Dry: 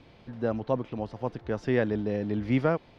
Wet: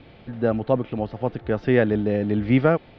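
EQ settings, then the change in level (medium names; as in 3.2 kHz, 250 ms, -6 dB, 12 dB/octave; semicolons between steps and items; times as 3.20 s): low-pass 4 kHz 24 dB/octave; band-stop 1 kHz, Q 7.1; +7.0 dB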